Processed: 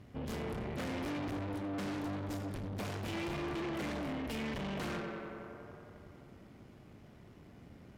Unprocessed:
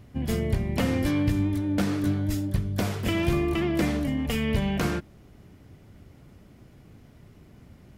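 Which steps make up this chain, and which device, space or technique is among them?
tape echo 91 ms, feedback 87%, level -8 dB, low-pass 3.5 kHz; tube preamp driven hard (valve stage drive 35 dB, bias 0.55; bass shelf 120 Hz -7 dB; treble shelf 6.9 kHz -8 dB)

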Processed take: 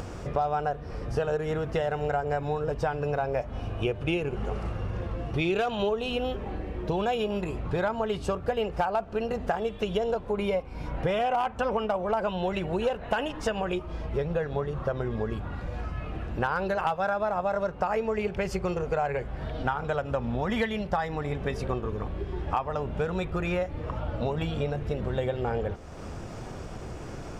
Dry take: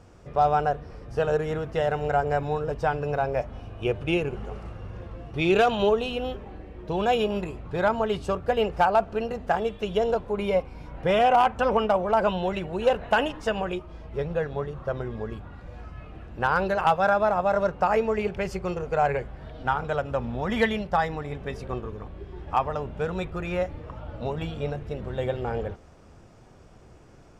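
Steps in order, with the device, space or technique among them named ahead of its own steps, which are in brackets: upward and downward compression (upward compressor, threshold -36 dBFS; compression 5:1, threshold -32 dBFS, peak gain reduction 14.5 dB); trim +6.5 dB

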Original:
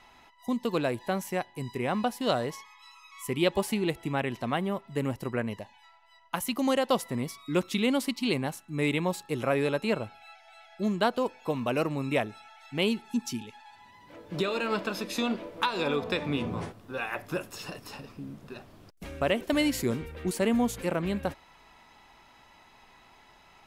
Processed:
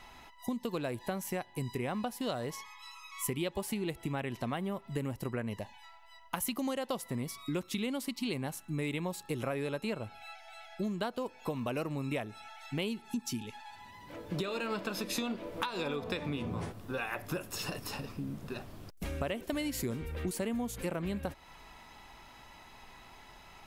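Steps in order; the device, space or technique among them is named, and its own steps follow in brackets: ASMR close-microphone chain (bass shelf 110 Hz +7 dB; compression 5:1, threshold -35 dBFS, peak gain reduction 14.5 dB; treble shelf 8.5 kHz +6.5 dB); trim +2 dB

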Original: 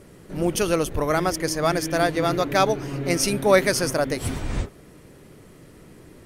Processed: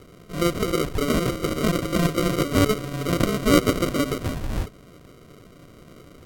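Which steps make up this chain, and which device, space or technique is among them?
crushed at another speed (playback speed 1.25×; sample-and-hold 41×; playback speed 0.8×)

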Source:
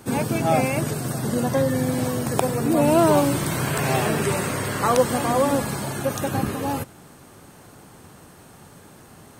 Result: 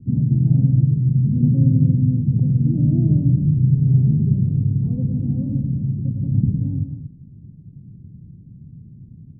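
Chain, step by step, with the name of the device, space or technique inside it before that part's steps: 1.40–1.96 s: peaking EQ 370 Hz +8 dB 1.1 oct; the neighbour's flat through the wall (low-pass 200 Hz 24 dB/octave; peaking EQ 130 Hz +5.5 dB 0.73 oct); loudspeakers at several distances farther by 37 m -8 dB, 79 m -11 dB; trim +7 dB

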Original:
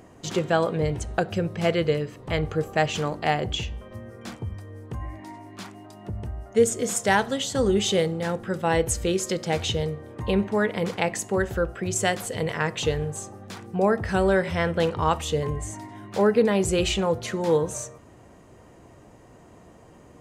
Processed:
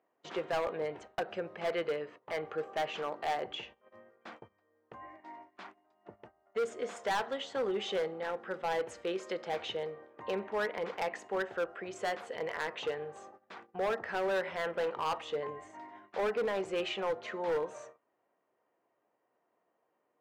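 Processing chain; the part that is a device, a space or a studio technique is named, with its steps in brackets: walkie-talkie (band-pass 500–2300 Hz; hard clipper -23.5 dBFS, distortion -9 dB; gate -46 dBFS, range -18 dB); trim -4.5 dB

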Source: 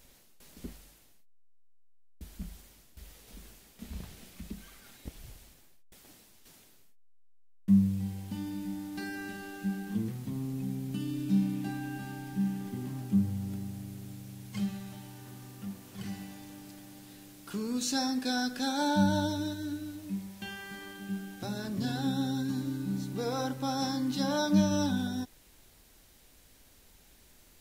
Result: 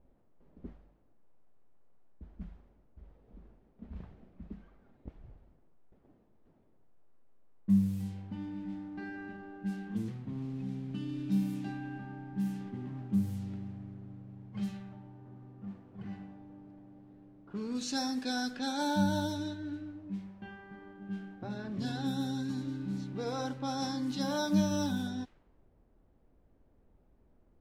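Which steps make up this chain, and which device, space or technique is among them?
cassette deck with a dynamic noise filter (white noise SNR 28 dB; level-controlled noise filter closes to 540 Hz, open at -26 dBFS); trim -3 dB

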